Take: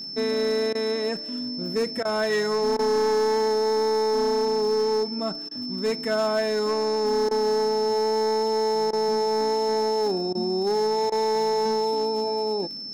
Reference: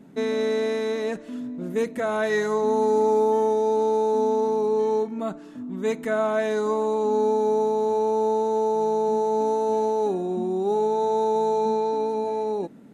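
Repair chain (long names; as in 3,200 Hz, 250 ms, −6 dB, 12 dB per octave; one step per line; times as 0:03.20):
clipped peaks rebuilt −18.5 dBFS
click removal
notch filter 5,300 Hz, Q 30
repair the gap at 0:00.73/0:02.03/0:02.77/0:05.49/0:07.29/0:08.91/0:10.33/0:11.10, 19 ms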